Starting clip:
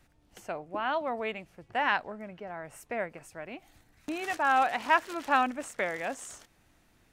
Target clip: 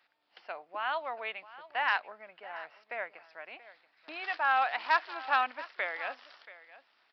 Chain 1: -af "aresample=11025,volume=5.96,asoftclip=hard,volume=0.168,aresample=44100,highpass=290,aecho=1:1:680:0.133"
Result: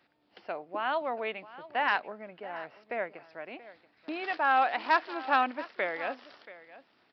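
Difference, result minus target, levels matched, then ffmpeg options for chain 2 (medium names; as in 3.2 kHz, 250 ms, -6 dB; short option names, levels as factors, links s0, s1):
250 Hz band +14.0 dB
-af "aresample=11025,volume=5.96,asoftclip=hard,volume=0.168,aresample=44100,highpass=840,aecho=1:1:680:0.133"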